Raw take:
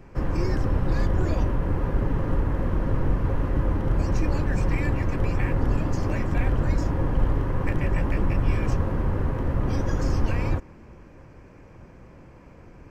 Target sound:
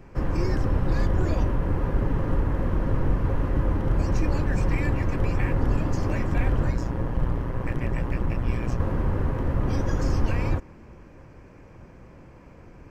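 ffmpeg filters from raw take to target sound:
ffmpeg -i in.wav -filter_complex "[0:a]asettb=1/sr,asplit=3[link_01][link_02][link_03];[link_01]atrim=end=6.704[link_04];[link_02]atrim=start=6.7:end=8.8,asetpts=PTS-STARTPTS,afade=type=in:duration=0.004:curve=qsin,afade=type=out:start_time=2.096:duration=0.004:curve=qsin,tremolo=f=120:d=0.667[link_05];[link_03]atrim=start=8.796[link_06];[link_04][link_05]acrossfade=duration=0.004:curve1=hsin:curve2=qsin[link_07];[link_07][link_06]acrossfade=duration=0.004:curve1=qsin:curve2=hsin" out.wav

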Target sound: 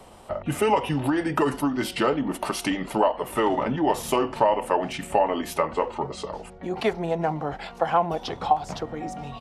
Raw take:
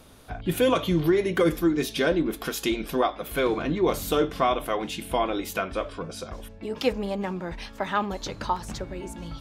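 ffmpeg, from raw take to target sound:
ffmpeg -i in.wav -filter_complex "[0:a]asetrate=37084,aresample=44100,atempo=1.18921,equalizer=frequency=760:width=1.2:gain=12.5,acrossover=split=85|740[link_01][link_02][link_03];[link_01]acompressor=threshold=-50dB:ratio=4[link_04];[link_02]acompressor=threshold=-22dB:ratio=4[link_05];[link_03]acompressor=threshold=-22dB:ratio=4[link_06];[link_04][link_05][link_06]amix=inputs=3:normalize=0" out.wav

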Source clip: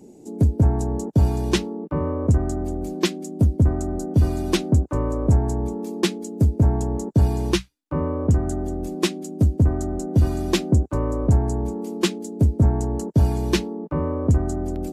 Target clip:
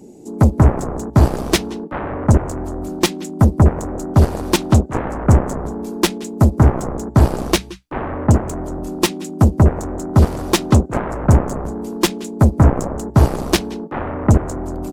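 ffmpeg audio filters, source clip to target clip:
ffmpeg -i in.wav -af "aecho=1:1:173:0.133,aeval=exprs='0.447*(cos(1*acos(clip(val(0)/0.447,-1,1)))-cos(1*PI/2))+0.141*(cos(7*acos(clip(val(0)/0.447,-1,1)))-cos(7*PI/2))':channel_layout=same,volume=3.5dB" out.wav

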